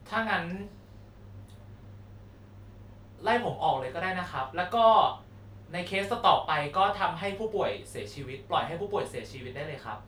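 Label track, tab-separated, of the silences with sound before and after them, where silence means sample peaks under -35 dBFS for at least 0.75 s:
0.670000	3.240000	silence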